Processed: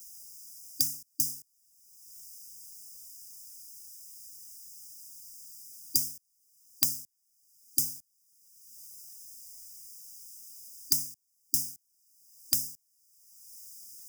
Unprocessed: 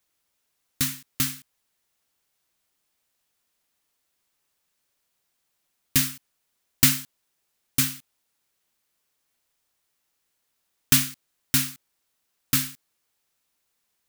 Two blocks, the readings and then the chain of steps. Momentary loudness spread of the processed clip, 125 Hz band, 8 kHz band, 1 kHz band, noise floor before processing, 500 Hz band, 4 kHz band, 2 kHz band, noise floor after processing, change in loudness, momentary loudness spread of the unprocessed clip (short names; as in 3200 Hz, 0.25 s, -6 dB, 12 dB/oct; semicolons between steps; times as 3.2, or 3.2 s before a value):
17 LU, -19.0 dB, -5.0 dB, under -20 dB, -76 dBFS, under -10 dB, -8.0 dB, -26.0 dB, -74 dBFS, -6.0 dB, 13 LU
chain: brick-wall FIR band-stop 290–4800 Hz; resonant low shelf 550 Hz -11.5 dB, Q 1.5; three-band squash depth 100%; gain -2 dB